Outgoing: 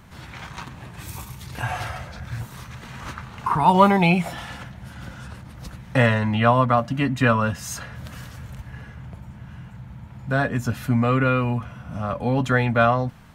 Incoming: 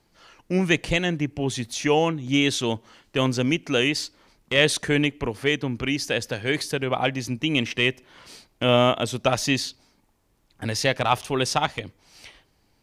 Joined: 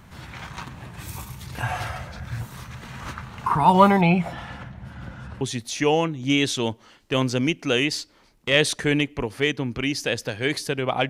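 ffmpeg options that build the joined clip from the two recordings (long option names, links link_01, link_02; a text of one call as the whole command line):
ffmpeg -i cue0.wav -i cue1.wav -filter_complex "[0:a]asettb=1/sr,asplit=3[link_01][link_02][link_03];[link_01]atrim=end=4.014[link_04];[link_02]atrim=start=4.01:end=5.41,asetpts=PTS-STARTPTS,afade=type=in:duration=0.004:curve=qsin,afade=type=out:start_time=1.396:duration=0.004:curve=qsin,lowpass=frequency=2200:poles=1[link_05];[link_03]atrim=start=5.406[link_06];[link_04][link_05]acrossfade=duration=0.004:curve1=hsin:curve2=qsin[link_07];[link_07][link_06]acrossfade=duration=0.004:curve1=qsin:curve2=hsin,apad=whole_dur=11.09,atrim=end=11.09,atrim=end=5.412[link_08];[1:a]atrim=start=1.448:end=7.13[link_09];[link_08][link_09]acrossfade=duration=0.004:curve1=hsin:curve2=hsin" out.wav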